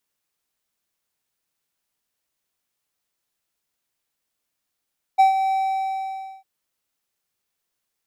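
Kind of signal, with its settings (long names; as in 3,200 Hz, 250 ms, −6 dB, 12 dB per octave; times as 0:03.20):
note with an ADSR envelope triangle 770 Hz, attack 20 ms, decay 125 ms, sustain −9 dB, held 0.34 s, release 913 ms −7.5 dBFS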